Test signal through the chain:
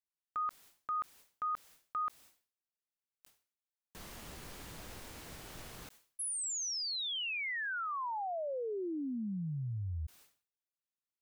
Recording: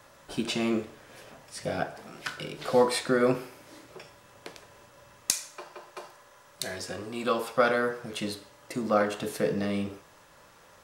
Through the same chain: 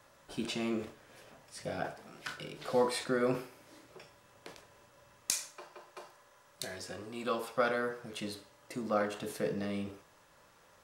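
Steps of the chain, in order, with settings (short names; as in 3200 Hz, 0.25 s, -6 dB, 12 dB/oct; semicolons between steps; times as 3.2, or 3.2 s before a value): sustainer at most 140 dB/s; gain -7 dB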